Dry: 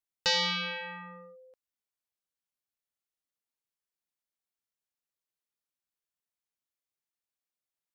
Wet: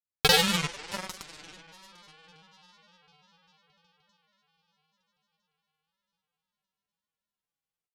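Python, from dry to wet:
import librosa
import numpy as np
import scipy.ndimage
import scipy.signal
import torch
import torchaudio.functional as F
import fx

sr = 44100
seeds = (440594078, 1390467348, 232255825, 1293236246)

p1 = fx.low_shelf(x, sr, hz=300.0, db=10.0)
p2 = fx.rider(p1, sr, range_db=10, speed_s=0.5)
p3 = p1 + (p2 * 10.0 ** (2.0 / 20.0))
p4 = fx.echo_heads(p3, sr, ms=291, heads='second and third', feedback_pct=50, wet_db=-11)
p5 = fx.granulator(p4, sr, seeds[0], grain_ms=100.0, per_s=20.0, spray_ms=100.0, spread_st=3)
y = fx.cheby_harmonics(p5, sr, harmonics=(5, 6, 7), levels_db=(-42, -23, -15), full_scale_db=-11.5)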